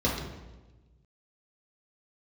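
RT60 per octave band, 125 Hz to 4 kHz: 1.9 s, 1.4 s, 1.3 s, 1.1 s, 0.95 s, 0.85 s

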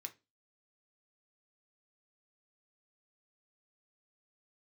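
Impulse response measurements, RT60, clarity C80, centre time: 0.25 s, 27.5 dB, 6 ms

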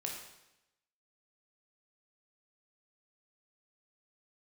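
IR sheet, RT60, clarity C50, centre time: 0.90 s, 3.5 dB, 43 ms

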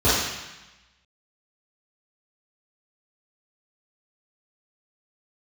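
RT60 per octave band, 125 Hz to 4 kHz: 1.2 s, 1.1 s, 0.90 s, 1.1 s, 1.2 s, 1.1 s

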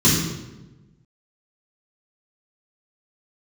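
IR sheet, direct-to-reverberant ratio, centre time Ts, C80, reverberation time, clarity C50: -9.0 dB, 62 ms, 4.0 dB, 1.1 s, 1.5 dB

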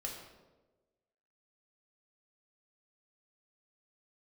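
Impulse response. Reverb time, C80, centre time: 1.2 s, 6.0 dB, 46 ms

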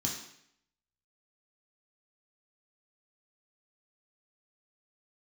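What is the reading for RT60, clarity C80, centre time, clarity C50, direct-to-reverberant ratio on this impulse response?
0.70 s, 7.5 dB, 40 ms, 4.5 dB, -3.0 dB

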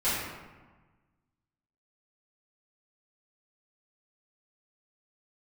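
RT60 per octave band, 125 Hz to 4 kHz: 1.8 s, 1.5 s, 1.2 s, 1.3 s, 1.1 s, 0.75 s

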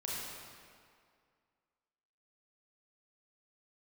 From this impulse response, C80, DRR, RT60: -1.0 dB, -6.0 dB, 2.2 s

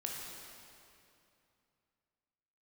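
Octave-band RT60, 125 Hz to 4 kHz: 3.3 s, 3.0 s, 2.7 s, 2.7 s, 2.4 s, 2.2 s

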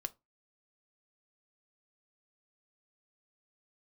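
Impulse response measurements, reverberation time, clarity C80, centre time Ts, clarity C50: 0.20 s, 33.5 dB, 3 ms, 23.5 dB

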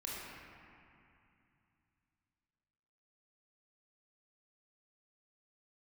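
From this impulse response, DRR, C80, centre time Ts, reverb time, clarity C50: -6.0 dB, -1.5 dB, 166 ms, 2.6 s, -3.0 dB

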